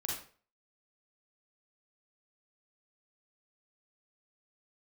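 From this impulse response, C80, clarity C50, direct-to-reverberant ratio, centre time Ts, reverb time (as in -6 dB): 7.5 dB, 1.5 dB, -3.0 dB, 46 ms, 0.45 s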